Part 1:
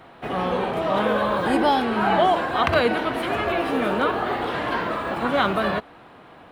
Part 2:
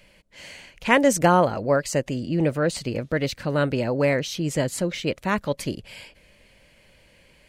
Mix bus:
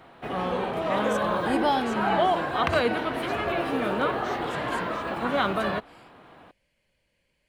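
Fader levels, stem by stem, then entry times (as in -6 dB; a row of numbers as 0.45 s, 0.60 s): -4.0 dB, -17.5 dB; 0.00 s, 0.00 s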